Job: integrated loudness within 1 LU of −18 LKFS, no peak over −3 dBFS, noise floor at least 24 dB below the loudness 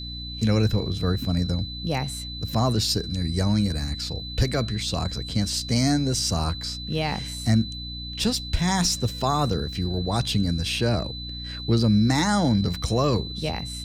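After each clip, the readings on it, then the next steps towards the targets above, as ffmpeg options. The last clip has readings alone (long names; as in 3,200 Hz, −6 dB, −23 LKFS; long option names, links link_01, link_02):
mains hum 60 Hz; hum harmonics up to 300 Hz; level of the hum −36 dBFS; interfering tone 4,000 Hz; level of the tone −35 dBFS; integrated loudness −24.5 LKFS; sample peak −9.0 dBFS; target loudness −18.0 LKFS
→ -af "bandreject=frequency=60:width_type=h:width=4,bandreject=frequency=120:width_type=h:width=4,bandreject=frequency=180:width_type=h:width=4,bandreject=frequency=240:width_type=h:width=4,bandreject=frequency=300:width_type=h:width=4"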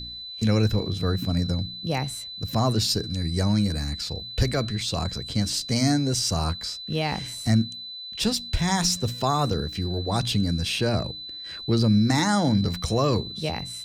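mains hum none found; interfering tone 4,000 Hz; level of the tone −35 dBFS
→ -af "bandreject=frequency=4000:width=30"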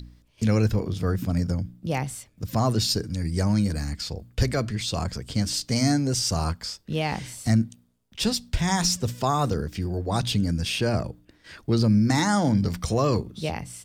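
interfering tone none found; integrated loudness −25.5 LKFS; sample peak −8.5 dBFS; target loudness −18.0 LKFS
→ -af "volume=7.5dB,alimiter=limit=-3dB:level=0:latency=1"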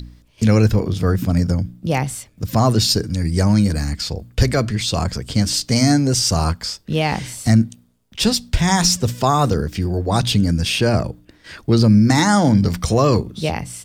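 integrated loudness −18.0 LKFS; sample peak −3.0 dBFS; background noise floor −53 dBFS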